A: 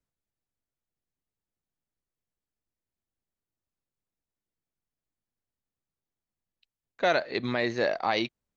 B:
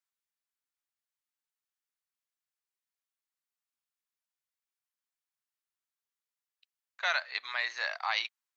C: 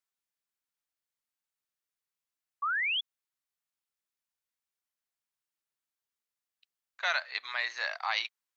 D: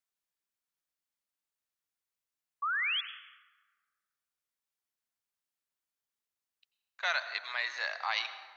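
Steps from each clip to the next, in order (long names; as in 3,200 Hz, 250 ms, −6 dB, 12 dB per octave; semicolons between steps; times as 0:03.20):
high-pass filter 1,000 Hz 24 dB per octave
sound drawn into the spectrogram rise, 0:02.62–0:03.01, 1,100–3,500 Hz −30 dBFS
dense smooth reverb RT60 1.5 s, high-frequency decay 0.55×, pre-delay 80 ms, DRR 11.5 dB; level −1.5 dB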